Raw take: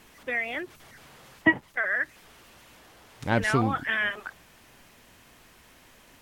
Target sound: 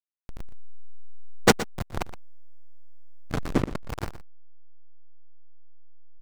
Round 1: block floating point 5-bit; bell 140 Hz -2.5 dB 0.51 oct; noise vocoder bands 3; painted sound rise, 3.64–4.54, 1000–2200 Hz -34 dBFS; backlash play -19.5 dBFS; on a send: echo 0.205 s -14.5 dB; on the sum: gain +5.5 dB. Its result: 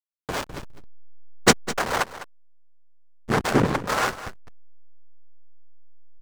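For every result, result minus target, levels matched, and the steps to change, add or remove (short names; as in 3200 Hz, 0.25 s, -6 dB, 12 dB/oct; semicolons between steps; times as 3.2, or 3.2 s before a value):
echo 86 ms late; backlash: distortion -11 dB
change: echo 0.119 s -14.5 dB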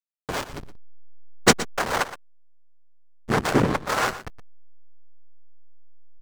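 backlash: distortion -11 dB
change: backlash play -11.5 dBFS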